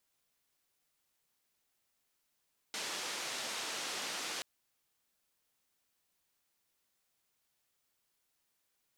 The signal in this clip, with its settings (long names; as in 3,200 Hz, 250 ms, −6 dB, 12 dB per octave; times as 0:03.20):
band-limited noise 270–6,000 Hz, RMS −40 dBFS 1.68 s